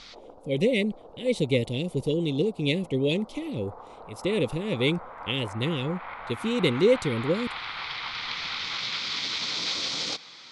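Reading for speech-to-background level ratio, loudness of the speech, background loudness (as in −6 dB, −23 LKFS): 4.5 dB, −27.5 LKFS, −32.0 LKFS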